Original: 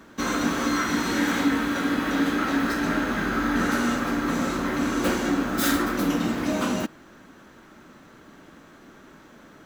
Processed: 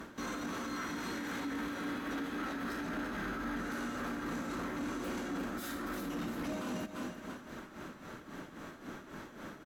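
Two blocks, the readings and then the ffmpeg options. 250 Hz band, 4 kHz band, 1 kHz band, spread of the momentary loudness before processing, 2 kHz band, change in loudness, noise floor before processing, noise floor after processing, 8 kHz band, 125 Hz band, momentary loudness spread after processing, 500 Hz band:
-14.0 dB, -14.5 dB, -13.5 dB, 3 LU, -13.5 dB, -15.0 dB, -50 dBFS, -53 dBFS, -15.0 dB, -13.0 dB, 10 LU, -13.0 dB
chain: -af "acompressor=threshold=0.0158:ratio=2.5,aecho=1:1:343|686|1029|1372:0.316|0.13|0.0532|0.0218,tremolo=f=3.7:d=0.65,equalizer=f=13000:w=0.47:g=11,asoftclip=type=tanh:threshold=0.0562,alimiter=level_in=3.35:limit=0.0631:level=0:latency=1:release=11,volume=0.299,highshelf=f=5700:g=-12,volume=1.58"

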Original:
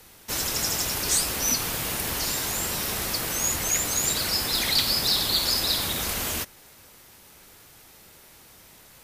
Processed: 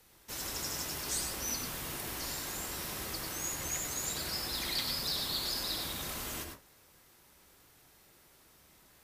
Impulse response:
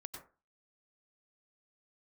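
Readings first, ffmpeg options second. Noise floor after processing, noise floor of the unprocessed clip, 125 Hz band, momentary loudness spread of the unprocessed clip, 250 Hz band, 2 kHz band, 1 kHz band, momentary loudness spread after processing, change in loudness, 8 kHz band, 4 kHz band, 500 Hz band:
-63 dBFS, -52 dBFS, -10.0 dB, 6 LU, -9.5 dB, -10.5 dB, -9.5 dB, 6 LU, -11.5 dB, -11.5 dB, -11.5 dB, -10.0 dB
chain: -filter_complex "[1:a]atrim=start_sample=2205,afade=t=out:st=0.22:d=0.01,atrim=end_sample=10143[s0];[0:a][s0]afir=irnorm=-1:irlink=0,volume=0.473"

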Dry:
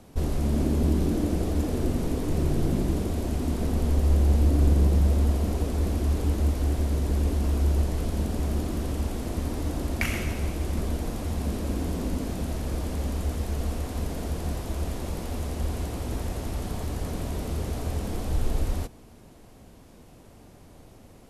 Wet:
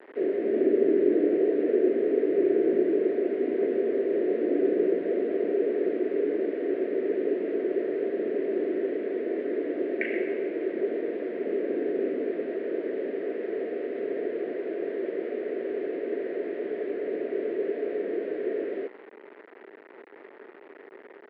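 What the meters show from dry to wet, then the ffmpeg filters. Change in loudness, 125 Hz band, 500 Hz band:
0.0 dB, under -30 dB, +11.0 dB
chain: -af "afftfilt=real='re*(1-between(b*sr/4096,730,1500))':imag='im*(1-between(b*sr/4096,730,1500))':win_size=4096:overlap=0.75,equalizer=f=410:t=o:w=1.4:g=10.5,aresample=11025,acrusher=bits=6:mix=0:aa=0.000001,aresample=44100,highpass=f=310:w=0.5412,highpass=f=310:w=1.3066,equalizer=f=400:t=q:w=4:g=8,equalizer=f=730:t=q:w=4:g=-3,equalizer=f=1100:t=q:w=4:g=-4,equalizer=f=1900:t=q:w=4:g=7,lowpass=f=2200:w=0.5412,lowpass=f=2200:w=1.3066,volume=0.708"

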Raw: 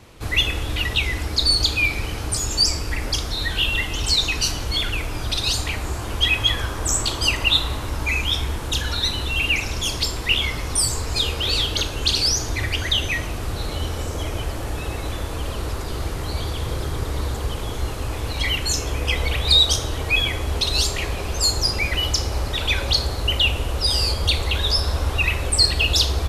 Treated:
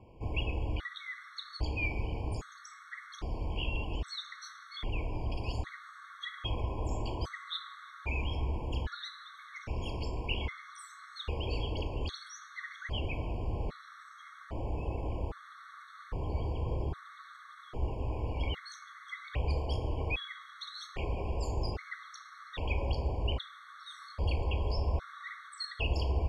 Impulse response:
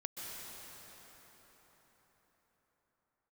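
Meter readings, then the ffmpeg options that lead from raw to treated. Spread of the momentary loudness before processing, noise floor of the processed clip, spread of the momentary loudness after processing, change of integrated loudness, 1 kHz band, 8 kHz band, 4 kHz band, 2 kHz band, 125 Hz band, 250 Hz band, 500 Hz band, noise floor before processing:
11 LU, -53 dBFS, 14 LU, -16.5 dB, -11.0 dB, -31.0 dB, -24.0 dB, -18.0 dB, -10.5 dB, -10.5 dB, -10.5 dB, -29 dBFS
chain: -filter_complex "[0:a]lowpass=1400,aemphasis=mode=production:type=50fm,bandreject=f=293.4:t=h:w=4,bandreject=f=586.8:t=h:w=4,bandreject=f=880.2:t=h:w=4,asplit=2[s0][s1];[s1]equalizer=f=120:t=o:w=1.5:g=-9[s2];[1:a]atrim=start_sample=2205,adelay=146[s3];[s2][s3]afir=irnorm=-1:irlink=0,volume=0.106[s4];[s0][s4]amix=inputs=2:normalize=0,afftfilt=real='re*gt(sin(2*PI*0.62*pts/sr)*(1-2*mod(floor(b*sr/1024/1100),2)),0)':imag='im*gt(sin(2*PI*0.62*pts/sr)*(1-2*mod(floor(b*sr/1024/1100),2)),0)':win_size=1024:overlap=0.75,volume=0.447"

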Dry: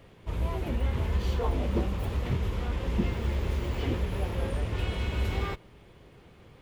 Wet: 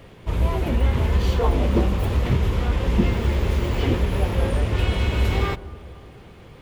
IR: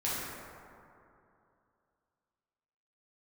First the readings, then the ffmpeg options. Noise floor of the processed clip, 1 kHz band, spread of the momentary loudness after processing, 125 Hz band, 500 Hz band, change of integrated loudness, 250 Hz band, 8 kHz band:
-45 dBFS, +8.5 dB, 4 LU, +8.5 dB, +8.5 dB, +8.5 dB, +8.5 dB, +8.5 dB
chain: -filter_complex "[0:a]asplit=2[s0][s1];[1:a]atrim=start_sample=2205,lowpass=1200,adelay=17[s2];[s1][s2]afir=irnorm=-1:irlink=0,volume=0.0794[s3];[s0][s3]amix=inputs=2:normalize=0,volume=2.66"

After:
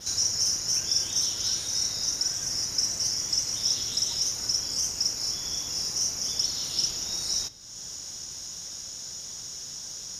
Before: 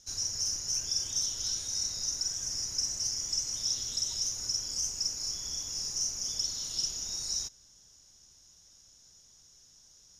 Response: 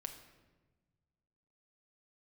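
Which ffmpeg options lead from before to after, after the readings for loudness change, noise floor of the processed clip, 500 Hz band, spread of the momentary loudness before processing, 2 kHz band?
+4.5 dB, -40 dBFS, +9.5 dB, 3 LU, +9.5 dB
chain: -filter_complex "[0:a]acompressor=mode=upward:threshold=0.0158:ratio=2.5,adynamicequalizer=threshold=0.00501:dfrequency=6800:dqfactor=1.8:tfrequency=6800:tqfactor=1.8:attack=5:release=100:ratio=0.375:range=3.5:mode=cutabove:tftype=bell,highpass=f=110:p=1,asplit=2[s0][s1];[1:a]atrim=start_sample=2205[s2];[s1][s2]afir=irnorm=-1:irlink=0,volume=0.75[s3];[s0][s3]amix=inputs=2:normalize=0,volume=2"

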